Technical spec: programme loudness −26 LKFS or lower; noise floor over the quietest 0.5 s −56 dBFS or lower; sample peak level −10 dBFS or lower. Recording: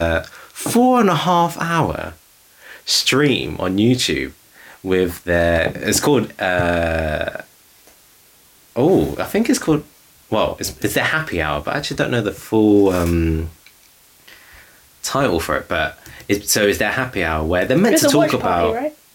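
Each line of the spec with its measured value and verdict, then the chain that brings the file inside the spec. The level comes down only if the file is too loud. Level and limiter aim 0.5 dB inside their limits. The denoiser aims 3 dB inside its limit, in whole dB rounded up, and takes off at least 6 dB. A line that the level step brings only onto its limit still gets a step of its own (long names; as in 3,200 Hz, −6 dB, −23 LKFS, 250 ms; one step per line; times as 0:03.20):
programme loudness −17.5 LKFS: out of spec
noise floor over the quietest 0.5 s −51 dBFS: out of spec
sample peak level −4.5 dBFS: out of spec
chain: level −9 dB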